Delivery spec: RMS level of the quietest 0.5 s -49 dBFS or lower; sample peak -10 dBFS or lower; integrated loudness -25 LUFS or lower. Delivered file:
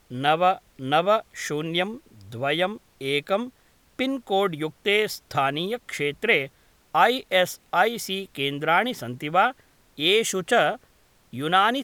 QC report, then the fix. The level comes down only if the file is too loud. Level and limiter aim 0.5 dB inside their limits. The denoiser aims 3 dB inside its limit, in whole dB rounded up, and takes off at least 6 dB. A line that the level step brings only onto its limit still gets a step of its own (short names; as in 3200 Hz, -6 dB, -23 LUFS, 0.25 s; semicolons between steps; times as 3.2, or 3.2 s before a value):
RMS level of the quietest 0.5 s -59 dBFS: OK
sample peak -5.0 dBFS: fail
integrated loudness -24.0 LUFS: fail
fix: gain -1.5 dB; limiter -10.5 dBFS